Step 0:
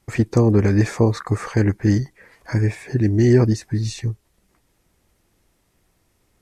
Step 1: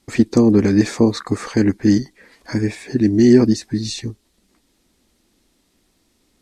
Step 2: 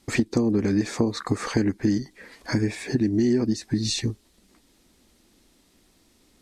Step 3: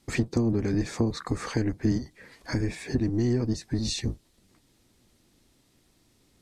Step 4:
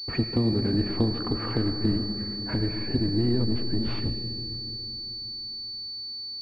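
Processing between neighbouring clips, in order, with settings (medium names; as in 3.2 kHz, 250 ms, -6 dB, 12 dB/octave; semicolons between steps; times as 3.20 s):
graphic EQ 125/250/4000/8000 Hz -7/+11/+9/+4 dB; trim -1.5 dB
compression 5:1, threshold -22 dBFS, peak gain reduction 14.5 dB; trim +2 dB
octave divider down 1 oct, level -2 dB; trim -4.5 dB
algorithmic reverb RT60 3.6 s, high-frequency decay 0.35×, pre-delay 35 ms, DRR 7 dB; class-D stage that switches slowly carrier 4.5 kHz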